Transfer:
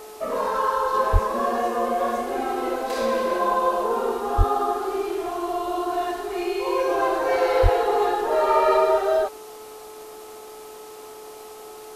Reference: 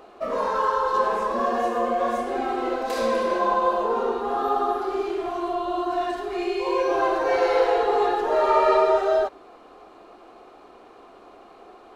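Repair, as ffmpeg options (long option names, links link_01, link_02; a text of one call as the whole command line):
ffmpeg -i in.wav -filter_complex "[0:a]bandreject=frequency=430.8:width_type=h:width=4,bandreject=frequency=861.6:width_type=h:width=4,bandreject=frequency=1292.4:width_type=h:width=4,asplit=3[link_01][link_02][link_03];[link_01]afade=type=out:start_time=1.12:duration=0.02[link_04];[link_02]highpass=frequency=140:width=0.5412,highpass=frequency=140:width=1.3066,afade=type=in:start_time=1.12:duration=0.02,afade=type=out:start_time=1.24:duration=0.02[link_05];[link_03]afade=type=in:start_time=1.24:duration=0.02[link_06];[link_04][link_05][link_06]amix=inputs=3:normalize=0,asplit=3[link_07][link_08][link_09];[link_07]afade=type=out:start_time=4.37:duration=0.02[link_10];[link_08]highpass=frequency=140:width=0.5412,highpass=frequency=140:width=1.3066,afade=type=in:start_time=4.37:duration=0.02,afade=type=out:start_time=4.49:duration=0.02[link_11];[link_09]afade=type=in:start_time=4.49:duration=0.02[link_12];[link_10][link_11][link_12]amix=inputs=3:normalize=0,asplit=3[link_13][link_14][link_15];[link_13]afade=type=out:start_time=7.62:duration=0.02[link_16];[link_14]highpass=frequency=140:width=0.5412,highpass=frequency=140:width=1.3066,afade=type=in:start_time=7.62:duration=0.02,afade=type=out:start_time=7.74:duration=0.02[link_17];[link_15]afade=type=in:start_time=7.74:duration=0.02[link_18];[link_16][link_17][link_18]amix=inputs=3:normalize=0,afwtdn=0.0045" out.wav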